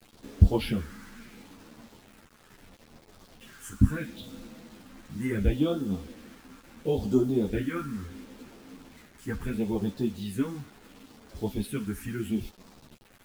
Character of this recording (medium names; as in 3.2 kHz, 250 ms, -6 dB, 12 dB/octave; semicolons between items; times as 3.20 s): phasing stages 4, 0.73 Hz, lowest notch 590–2200 Hz; a quantiser's noise floor 8-bit, dither none; a shimmering, thickened sound